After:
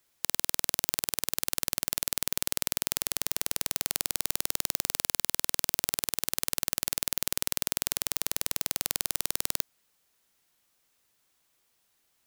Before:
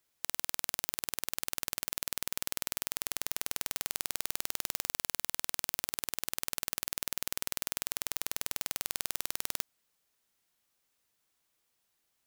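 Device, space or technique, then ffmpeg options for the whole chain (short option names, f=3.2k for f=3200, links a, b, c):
one-band saturation: -filter_complex "[0:a]acrossover=split=520|2600[a][b][c];[b]asoftclip=type=tanh:threshold=-32.5dB[d];[a][d][c]amix=inputs=3:normalize=0,volume=6dB"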